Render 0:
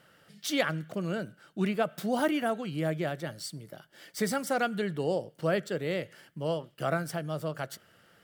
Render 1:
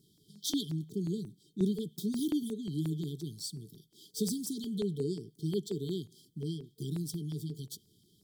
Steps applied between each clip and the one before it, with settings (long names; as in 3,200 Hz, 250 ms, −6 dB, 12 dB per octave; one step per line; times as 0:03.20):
brick-wall band-stop 450–3,100 Hz
auto-filter notch saw down 5.6 Hz 250–3,800 Hz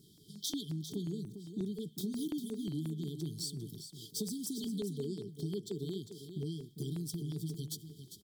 downward compressor 4 to 1, threshold −42 dBFS, peak gain reduction 15 dB
single-tap delay 400 ms −10 dB
level +5 dB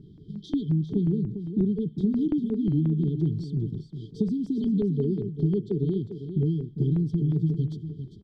low-pass filter 2,300 Hz 12 dB per octave
spectral tilt −3 dB per octave
level +7 dB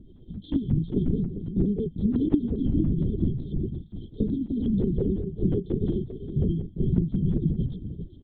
linear-prediction vocoder at 8 kHz whisper